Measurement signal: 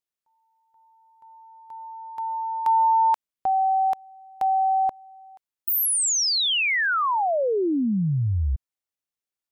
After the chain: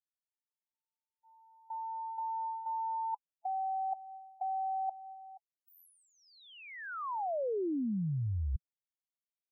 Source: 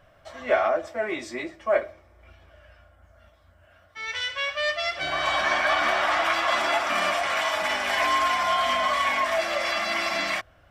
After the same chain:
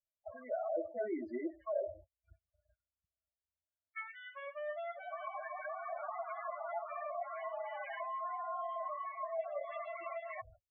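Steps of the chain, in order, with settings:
noise gate −47 dBFS, range −47 dB
high-frequency loss of the air 77 metres
reversed playback
downward compressor 10 to 1, threshold −32 dBFS
reversed playback
spectral peaks only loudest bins 8
treble cut that deepens with the level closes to 940 Hz, closed at −35.5 dBFS

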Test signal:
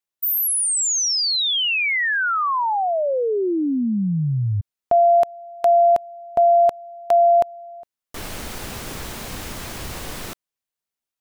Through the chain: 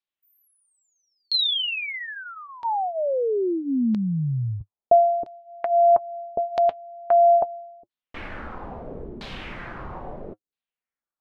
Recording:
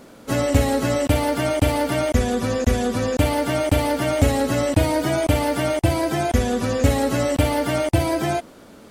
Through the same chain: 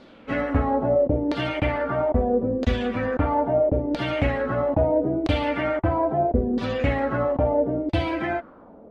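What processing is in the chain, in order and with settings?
parametric band 7,100 Hz −5.5 dB 1.5 octaves
flanger 0.36 Hz, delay 3.4 ms, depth 2.5 ms, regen −60%
auto-filter low-pass saw down 0.76 Hz 320–4,200 Hz

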